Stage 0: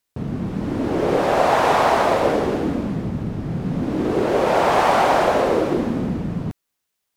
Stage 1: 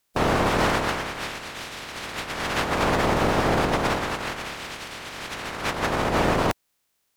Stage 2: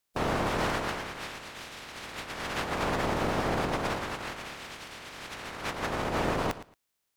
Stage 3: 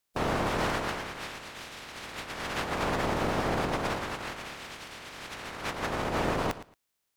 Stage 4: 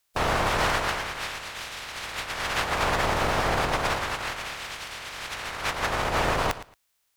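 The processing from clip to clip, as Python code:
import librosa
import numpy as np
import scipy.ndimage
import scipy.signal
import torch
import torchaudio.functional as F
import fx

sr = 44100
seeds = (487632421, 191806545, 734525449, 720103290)

y1 = fx.spec_clip(x, sr, under_db=25)
y1 = fx.over_compress(y1, sr, threshold_db=-25.0, ratio=-0.5)
y2 = fx.echo_feedback(y1, sr, ms=113, feedback_pct=17, wet_db=-14.5)
y2 = F.gain(torch.from_numpy(y2), -7.5).numpy()
y3 = y2
y4 = fx.peak_eq(y3, sr, hz=250.0, db=-10.0, octaves=2.0)
y4 = F.gain(torch.from_numpy(y4), 7.5).numpy()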